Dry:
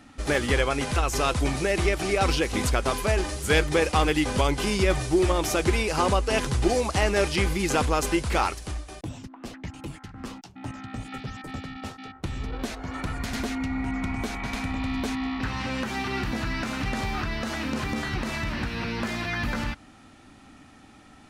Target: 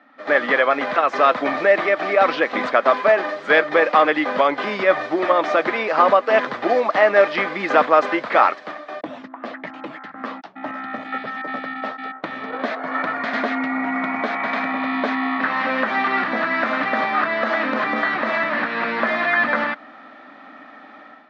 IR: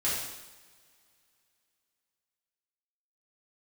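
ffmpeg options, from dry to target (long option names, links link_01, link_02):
-af "dynaudnorm=framelen=110:gausssize=5:maxgain=11.5dB,highpass=frequency=260:width=0.5412,highpass=frequency=260:width=1.3066,equalizer=frequency=370:width_type=q:width=4:gain=-8,equalizer=frequency=620:width_type=q:width=4:gain=9,equalizer=frequency=1200:width_type=q:width=4:gain=7,equalizer=frequency=1800:width_type=q:width=4:gain=7,equalizer=frequency=2800:width_type=q:width=4:gain=-7,lowpass=frequency=3400:width=0.5412,lowpass=frequency=3400:width=1.3066,volume=-3dB"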